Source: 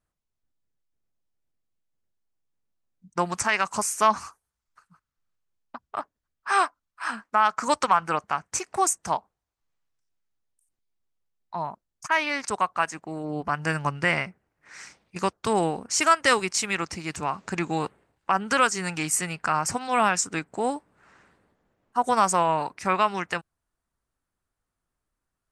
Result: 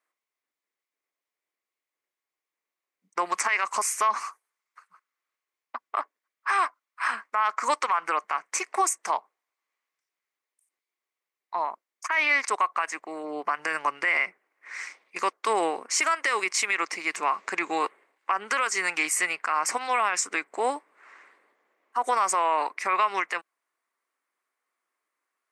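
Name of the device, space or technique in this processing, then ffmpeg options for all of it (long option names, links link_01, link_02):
laptop speaker: -af "highpass=frequency=340:width=0.5412,highpass=frequency=340:width=1.3066,equalizer=frequency=1100:width_type=o:width=0.26:gain=8,equalizer=frequency=2100:width_type=o:width=0.54:gain=11.5,alimiter=limit=-14.5dB:level=0:latency=1:release=60"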